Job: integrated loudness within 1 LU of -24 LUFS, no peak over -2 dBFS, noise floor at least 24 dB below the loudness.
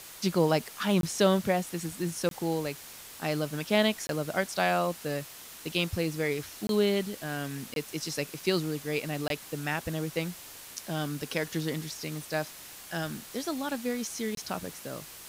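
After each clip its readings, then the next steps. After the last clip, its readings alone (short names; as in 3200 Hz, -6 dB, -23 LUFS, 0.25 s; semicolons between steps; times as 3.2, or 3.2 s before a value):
dropouts 7; longest dropout 22 ms; noise floor -47 dBFS; noise floor target -55 dBFS; loudness -31.0 LUFS; peak -11.0 dBFS; loudness target -24.0 LUFS
-> interpolate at 1.01/2.29/4.07/6.67/7.74/9.28/14.35, 22 ms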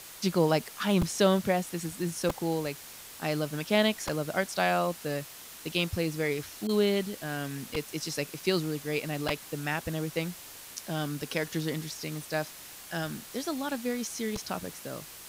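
dropouts 0; noise floor -47 dBFS; noise floor target -55 dBFS
-> noise print and reduce 8 dB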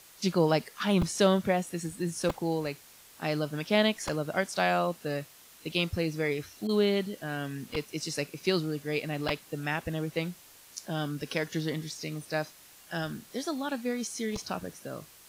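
noise floor -55 dBFS; loudness -31.0 LUFS; peak -11.5 dBFS; loudness target -24.0 LUFS
-> gain +7 dB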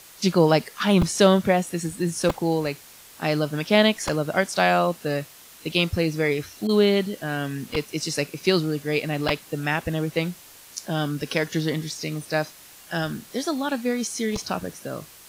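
loudness -24.0 LUFS; peak -4.5 dBFS; noise floor -48 dBFS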